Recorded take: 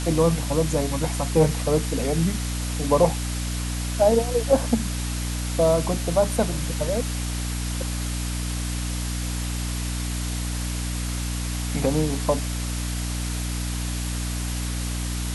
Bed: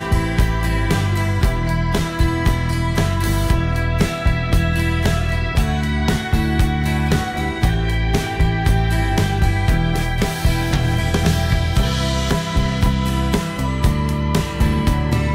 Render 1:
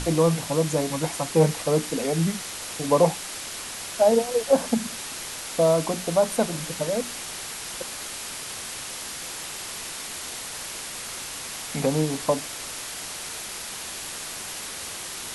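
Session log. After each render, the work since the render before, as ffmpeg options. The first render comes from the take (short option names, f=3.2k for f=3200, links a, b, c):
-af "bandreject=f=60:t=h:w=6,bandreject=f=120:t=h:w=6,bandreject=f=180:t=h:w=6,bandreject=f=240:t=h:w=6,bandreject=f=300:t=h:w=6"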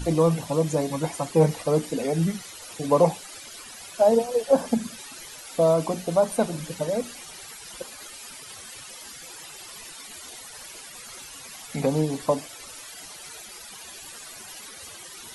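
-af "afftdn=nr=15:nf=-36"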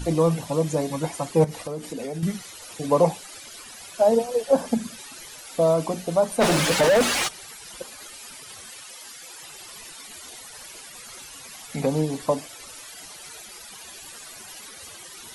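-filter_complex "[0:a]asettb=1/sr,asplit=3[a][b][c];[a]atrim=end=1.444[d];[b]atrim=start=1.44:end=2.23,asetpts=PTS-STARTPTS,afade=t=in:d=0.004:c=qsin,afade=t=out:st=0.786:d=0.004:c=qsin,acompressor=threshold=-28dB:ratio=6:attack=3.2:release=140:knee=1:detection=peak[e];[c]atrim=start=2.226[f];[d][e]acrossfade=d=0.004:c1=hsin:c2=qsin[g];[g][f]acrossfade=d=0.004:c1=qsin:c2=hsin,asplit=3[h][i][j];[h]afade=t=out:st=6.4:d=0.02[k];[i]asplit=2[l][m];[m]highpass=f=720:p=1,volume=36dB,asoftclip=type=tanh:threshold=-10dB[n];[l][n]amix=inputs=2:normalize=0,lowpass=f=2.7k:p=1,volume=-6dB,afade=t=in:st=6.4:d=0.02,afade=t=out:st=7.27:d=0.02[o];[j]afade=t=in:st=7.27:d=0.02[p];[k][o][p]amix=inputs=3:normalize=0,asettb=1/sr,asplit=3[q][r][s];[q]atrim=end=8.744[t];[r]atrim=start=8.74:end=9.43,asetpts=PTS-STARTPTS,afade=t=in:d=0.004:c=qsin,afade=t=out:st=0.686:d=0.004:c=qsin,lowshelf=f=240:g=-11.5[u];[s]atrim=start=9.426[v];[t][u]acrossfade=d=0.004:c1=hsin:c2=qsin[w];[w][v]acrossfade=d=0.004:c1=qsin:c2=hsin"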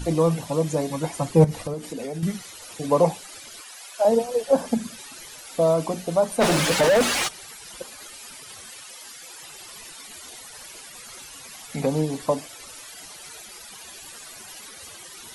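-filter_complex "[0:a]asettb=1/sr,asplit=3[a][b][c];[a]atrim=end=1.164[d];[b]atrim=start=1.16:end=1.74,asetpts=PTS-STARTPTS,afade=t=in:d=0.004:c=qsin,afade=t=out:st=0.576:d=0.004:c=qsin,lowshelf=f=180:g=11.5[e];[c]atrim=start=1.736[f];[d][e]acrossfade=d=0.004:c1=hsin:c2=qsin[g];[g][f]acrossfade=d=0.004:c1=qsin:c2=hsin,asettb=1/sr,asplit=3[h][i][j];[h]atrim=end=3.614[k];[i]atrim=start=3.61:end=4.05,asetpts=PTS-STARTPTS,afade=t=in:d=0.004:c=qsin,afade=t=out:st=0.436:d=0.004:c=qsin,highpass=600[l];[j]atrim=start=4.046[m];[k][l]acrossfade=d=0.004:c1=hsin:c2=qsin[n];[n][m]acrossfade=d=0.004:c1=qsin:c2=hsin"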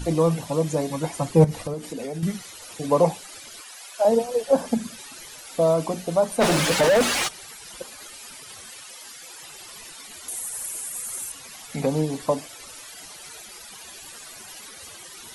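-filter_complex "[0:a]asettb=1/sr,asplit=3[a][b][c];[a]atrim=end=10.284[d];[b]atrim=start=10.28:end=11.32,asetpts=PTS-STARTPTS,afade=t=in:d=0.004:c=qsin,afade=t=out:st=1.036:d=0.004:c=qsin,highshelf=f=6.5k:t=q:w=1.5:g=11[e];[c]atrim=start=11.316[f];[d][e]acrossfade=d=0.004:c1=hsin:c2=qsin[g];[g][f]acrossfade=d=0.004:c1=qsin:c2=hsin"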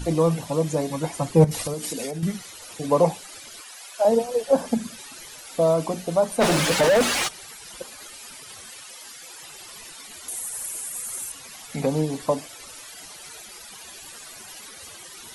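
-filter_complex "[0:a]asettb=1/sr,asplit=3[a][b][c];[a]atrim=end=1.514[d];[b]atrim=start=1.51:end=2.11,asetpts=PTS-STARTPTS,afade=t=in:d=0.004:c=qsin,afade=t=out:st=0.596:d=0.004:c=qsin,highshelf=f=2.8k:g=12[e];[c]atrim=start=2.106[f];[d][e]acrossfade=d=0.004:c1=hsin:c2=qsin[g];[g][f]acrossfade=d=0.004:c1=qsin:c2=hsin"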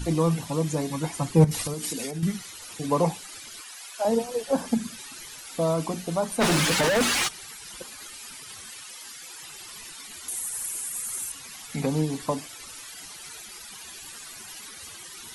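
-af "equalizer=f=580:t=o:w=0.84:g=-7.5"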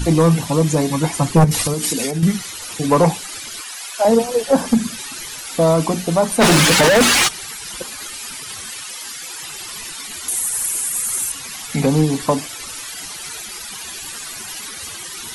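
-af "aeval=exprs='0.531*sin(PI/2*2.24*val(0)/0.531)':c=same"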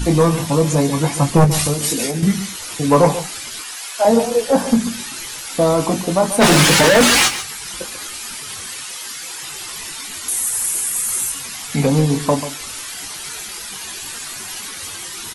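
-filter_complex "[0:a]asplit=2[a][b];[b]adelay=21,volume=-7dB[c];[a][c]amix=inputs=2:normalize=0,aecho=1:1:139:0.237"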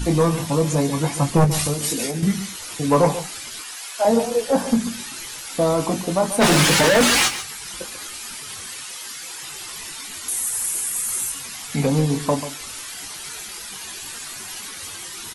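-af "volume=-4dB"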